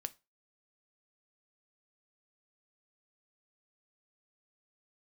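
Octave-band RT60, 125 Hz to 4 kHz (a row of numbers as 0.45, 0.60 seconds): 0.30, 0.25, 0.25, 0.25, 0.25, 0.25 seconds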